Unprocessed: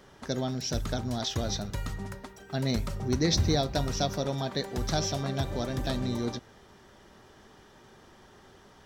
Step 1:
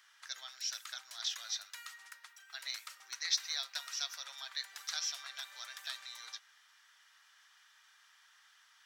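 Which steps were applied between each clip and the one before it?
high-pass filter 1,400 Hz 24 dB per octave
level −3 dB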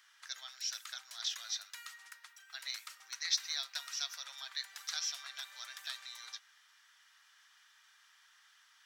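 low-shelf EQ 400 Hz −10.5 dB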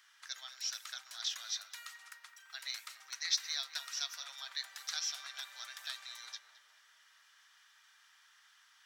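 feedback echo with a low-pass in the loop 212 ms, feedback 69%, low-pass 1,200 Hz, level −8 dB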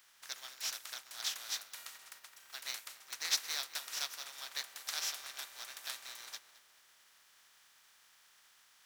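compressing power law on the bin magnitudes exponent 0.43

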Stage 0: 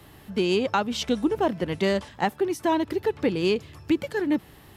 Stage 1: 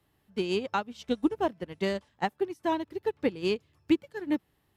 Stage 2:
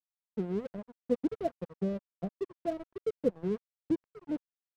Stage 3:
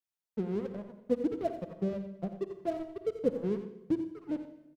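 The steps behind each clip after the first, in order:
expander for the loud parts 2.5 to 1, over −32 dBFS
in parallel at −7 dB: bit reduction 5 bits; on the sum: Chebyshev low-pass with heavy ripple 700 Hz, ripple 9 dB; dead-zone distortion −45.5 dBFS
single-tap delay 88 ms −11 dB; convolution reverb RT60 0.90 s, pre-delay 47 ms, DRR 10 dB

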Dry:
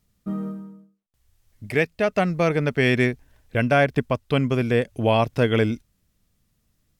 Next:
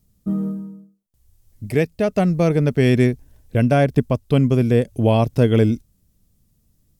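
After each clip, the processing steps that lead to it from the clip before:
parametric band 1,800 Hz −13 dB 3 octaves
level +7.5 dB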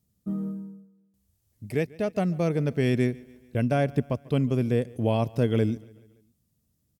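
high-pass filter 75 Hz
repeating echo 143 ms, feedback 54%, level −23 dB
level −8 dB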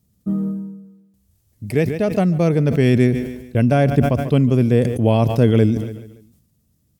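low-shelf EQ 410 Hz +3 dB
level that may fall only so fast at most 61 dB per second
level +6.5 dB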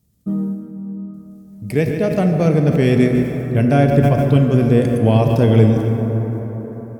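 dense smooth reverb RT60 5 s, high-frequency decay 0.35×, DRR 3.5 dB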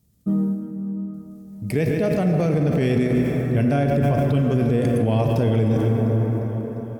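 brickwall limiter −12 dBFS, peak gain reduction 10 dB
feedback echo with a high-pass in the loop 351 ms, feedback 61%, level −16 dB

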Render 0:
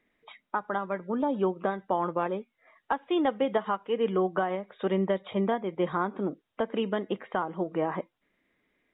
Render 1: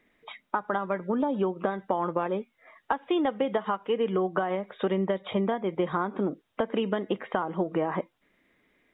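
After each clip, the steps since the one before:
downward compressor, threshold −29 dBFS, peak gain reduction 8 dB
level +6 dB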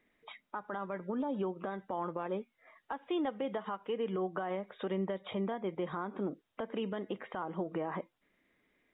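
brickwall limiter −20 dBFS, peak gain reduction 9.5 dB
level −6.5 dB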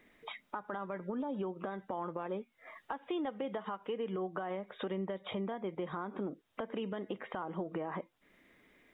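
downward compressor 2 to 1, threshold −53 dBFS, peak gain reduction 12.5 dB
level +9 dB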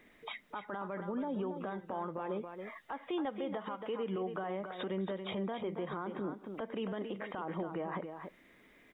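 single-tap delay 277 ms −9.5 dB
brickwall limiter −31.5 dBFS, peak gain reduction 7.5 dB
level +2.5 dB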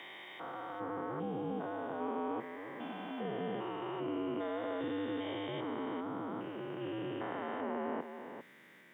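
spectrum averaged block by block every 400 ms
frequency shifter −90 Hz
Bessel high-pass filter 240 Hz, order 8
level +6 dB

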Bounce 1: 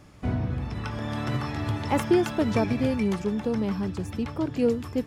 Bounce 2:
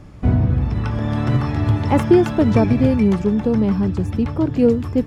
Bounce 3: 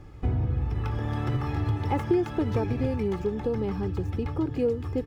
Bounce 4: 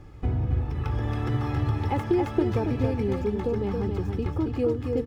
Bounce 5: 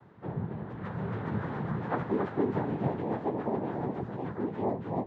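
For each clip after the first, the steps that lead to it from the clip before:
spectral tilt −2 dB per octave; level +5.5 dB
running median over 5 samples; comb filter 2.4 ms, depth 55%; downward compressor 2 to 1, threshold −19 dBFS, peak gain reduction 8 dB; level −6.5 dB
single-tap delay 275 ms −5 dB
every partial snapped to a pitch grid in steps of 6 semitones; cochlear-implant simulation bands 6; low-pass filter 1,300 Hz 12 dB per octave; level −5 dB

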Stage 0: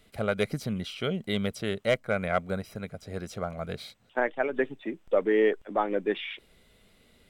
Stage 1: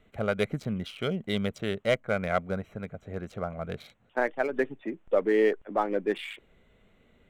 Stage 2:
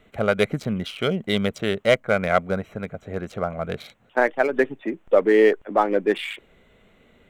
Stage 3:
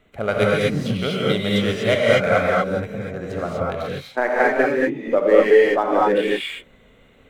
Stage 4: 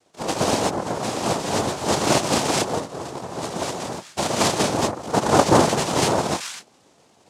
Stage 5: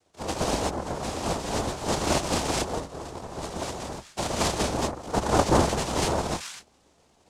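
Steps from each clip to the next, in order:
adaptive Wiener filter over 9 samples
low-shelf EQ 160 Hz −5.5 dB; level +8 dB
reverb whose tail is shaped and stops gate 270 ms rising, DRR −5 dB; level −2.5 dB
cochlear-implant simulation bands 2; level −3 dB
sub-octave generator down 2 octaves, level −2 dB; level −6 dB

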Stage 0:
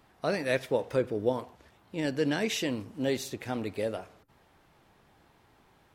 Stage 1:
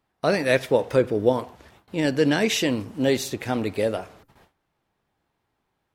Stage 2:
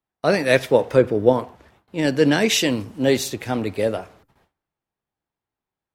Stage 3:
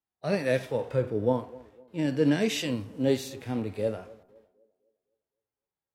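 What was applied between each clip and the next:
noise gate with hold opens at −50 dBFS; level +8 dB
multiband upward and downward expander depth 40%; level +3 dB
harmonic and percussive parts rebalanced percussive −15 dB; feedback echo with a band-pass in the loop 254 ms, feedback 42%, band-pass 420 Hz, level −20 dB; level −4.5 dB

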